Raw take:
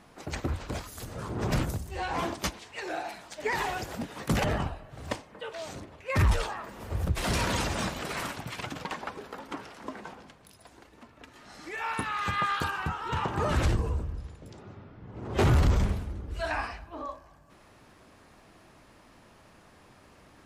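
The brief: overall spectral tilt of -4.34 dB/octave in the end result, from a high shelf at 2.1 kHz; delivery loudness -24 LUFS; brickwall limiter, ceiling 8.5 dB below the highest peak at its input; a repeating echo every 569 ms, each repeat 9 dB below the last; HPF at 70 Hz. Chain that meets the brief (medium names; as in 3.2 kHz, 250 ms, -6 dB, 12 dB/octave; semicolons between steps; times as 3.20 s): high-pass 70 Hz; treble shelf 2.1 kHz +9 dB; peak limiter -20 dBFS; feedback delay 569 ms, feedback 35%, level -9 dB; trim +7.5 dB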